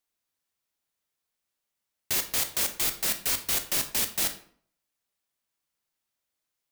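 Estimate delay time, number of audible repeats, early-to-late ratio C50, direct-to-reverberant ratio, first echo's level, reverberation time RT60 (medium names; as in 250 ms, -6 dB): no echo, no echo, 12.0 dB, 7.5 dB, no echo, 0.55 s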